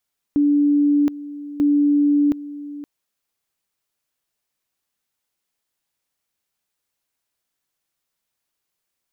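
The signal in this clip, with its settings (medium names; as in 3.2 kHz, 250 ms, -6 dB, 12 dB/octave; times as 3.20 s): two-level tone 290 Hz -13 dBFS, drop 16.5 dB, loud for 0.72 s, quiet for 0.52 s, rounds 2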